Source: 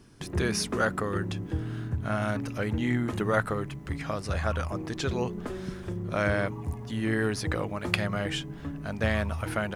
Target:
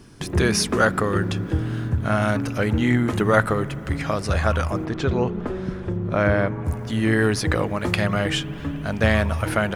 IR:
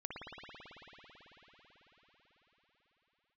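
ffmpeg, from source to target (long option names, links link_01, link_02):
-filter_complex "[0:a]asplit=3[link_01][link_02][link_03];[link_01]afade=type=out:start_time=4.84:duration=0.02[link_04];[link_02]lowpass=frequency=1600:poles=1,afade=type=in:start_time=4.84:duration=0.02,afade=type=out:start_time=6.65:duration=0.02[link_05];[link_03]afade=type=in:start_time=6.65:duration=0.02[link_06];[link_04][link_05][link_06]amix=inputs=3:normalize=0,asplit=2[link_07][link_08];[1:a]atrim=start_sample=2205[link_09];[link_08][link_09]afir=irnorm=-1:irlink=0,volume=-18.5dB[link_10];[link_07][link_10]amix=inputs=2:normalize=0,alimiter=level_in=8.5dB:limit=-1dB:release=50:level=0:latency=1,volume=-1dB"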